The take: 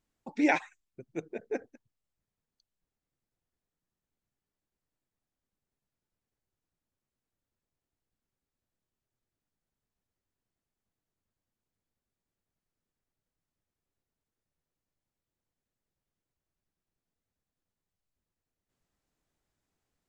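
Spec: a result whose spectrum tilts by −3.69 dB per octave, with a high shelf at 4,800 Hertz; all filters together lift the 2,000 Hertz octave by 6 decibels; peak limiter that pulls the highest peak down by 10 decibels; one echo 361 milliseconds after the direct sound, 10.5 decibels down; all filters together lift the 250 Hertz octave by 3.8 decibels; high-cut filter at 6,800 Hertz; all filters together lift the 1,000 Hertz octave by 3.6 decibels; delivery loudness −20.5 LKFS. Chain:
low-pass filter 6,800 Hz
parametric band 250 Hz +4.5 dB
parametric band 1,000 Hz +3.5 dB
parametric band 2,000 Hz +5 dB
high-shelf EQ 4,800 Hz +7 dB
brickwall limiter −16.5 dBFS
single-tap delay 361 ms −10.5 dB
level +12 dB

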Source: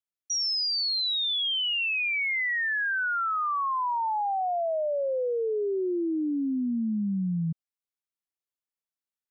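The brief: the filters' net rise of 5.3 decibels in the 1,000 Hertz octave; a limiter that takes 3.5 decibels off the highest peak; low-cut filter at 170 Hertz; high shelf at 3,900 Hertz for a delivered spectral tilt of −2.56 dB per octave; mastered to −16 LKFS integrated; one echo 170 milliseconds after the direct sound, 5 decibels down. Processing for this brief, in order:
high-pass filter 170 Hz
parametric band 1,000 Hz +6 dB
high-shelf EQ 3,900 Hz +8.5 dB
brickwall limiter −21.5 dBFS
single-tap delay 170 ms −5 dB
level +7 dB

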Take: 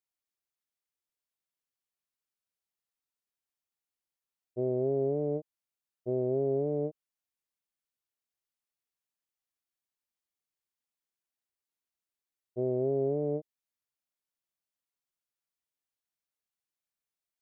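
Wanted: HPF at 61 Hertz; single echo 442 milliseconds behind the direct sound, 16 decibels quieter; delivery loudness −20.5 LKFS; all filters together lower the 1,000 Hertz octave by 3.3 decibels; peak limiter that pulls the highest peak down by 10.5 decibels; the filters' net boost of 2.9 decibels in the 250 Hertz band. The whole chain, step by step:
high-pass filter 61 Hz
parametric band 250 Hz +4.5 dB
parametric band 1,000 Hz −7 dB
brickwall limiter −30.5 dBFS
single-tap delay 442 ms −16 dB
level +20 dB

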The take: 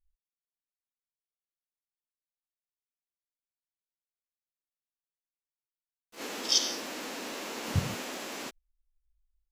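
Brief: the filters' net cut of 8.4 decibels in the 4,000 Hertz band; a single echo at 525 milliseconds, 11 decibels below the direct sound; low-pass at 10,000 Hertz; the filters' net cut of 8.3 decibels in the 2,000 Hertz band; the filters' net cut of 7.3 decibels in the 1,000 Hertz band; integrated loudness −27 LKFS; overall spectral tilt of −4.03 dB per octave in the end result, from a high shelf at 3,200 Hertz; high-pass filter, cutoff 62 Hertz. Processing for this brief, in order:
high-pass filter 62 Hz
low-pass filter 10,000 Hz
parametric band 1,000 Hz −7.5 dB
parametric band 2,000 Hz −5 dB
high-shelf EQ 3,200 Hz −5.5 dB
parametric band 4,000 Hz −5 dB
single-tap delay 525 ms −11 dB
level +11 dB

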